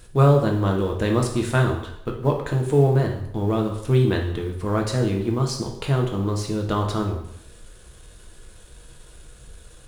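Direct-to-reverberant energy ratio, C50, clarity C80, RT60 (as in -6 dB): 0.5 dB, 6.5 dB, 10.0 dB, 0.75 s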